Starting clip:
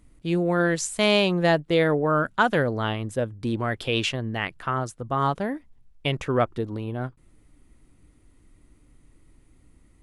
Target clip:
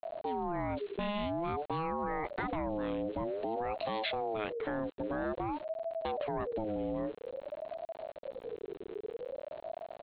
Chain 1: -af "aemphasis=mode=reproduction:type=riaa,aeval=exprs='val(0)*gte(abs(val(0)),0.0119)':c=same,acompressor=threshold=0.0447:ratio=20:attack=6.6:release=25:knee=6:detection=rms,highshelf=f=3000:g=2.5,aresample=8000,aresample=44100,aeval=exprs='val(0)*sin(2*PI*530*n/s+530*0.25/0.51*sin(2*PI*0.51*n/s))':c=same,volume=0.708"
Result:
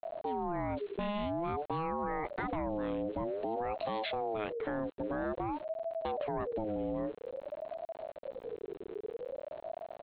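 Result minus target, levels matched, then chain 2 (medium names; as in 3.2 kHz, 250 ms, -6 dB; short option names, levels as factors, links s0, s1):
4 kHz band -3.0 dB
-af "aemphasis=mode=reproduction:type=riaa,aeval=exprs='val(0)*gte(abs(val(0)),0.0119)':c=same,acompressor=threshold=0.0447:ratio=20:attack=6.6:release=25:knee=6:detection=rms,highshelf=f=3000:g=9.5,aresample=8000,aresample=44100,aeval=exprs='val(0)*sin(2*PI*530*n/s+530*0.25/0.51*sin(2*PI*0.51*n/s))':c=same,volume=0.708"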